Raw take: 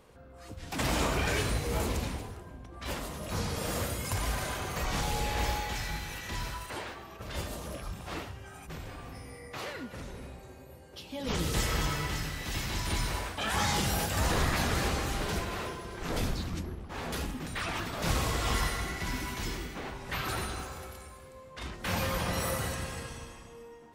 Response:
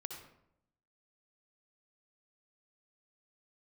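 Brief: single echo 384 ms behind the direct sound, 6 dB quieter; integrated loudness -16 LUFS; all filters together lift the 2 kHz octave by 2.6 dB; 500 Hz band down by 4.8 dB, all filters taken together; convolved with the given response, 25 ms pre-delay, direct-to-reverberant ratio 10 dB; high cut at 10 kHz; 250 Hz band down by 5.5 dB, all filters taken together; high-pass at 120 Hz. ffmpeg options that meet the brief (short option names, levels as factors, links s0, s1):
-filter_complex "[0:a]highpass=120,lowpass=10000,equalizer=f=250:t=o:g=-6,equalizer=f=500:t=o:g=-4.5,equalizer=f=2000:t=o:g=3.5,aecho=1:1:384:0.501,asplit=2[s0][s1];[1:a]atrim=start_sample=2205,adelay=25[s2];[s1][s2]afir=irnorm=-1:irlink=0,volume=0.422[s3];[s0][s3]amix=inputs=2:normalize=0,volume=7.08"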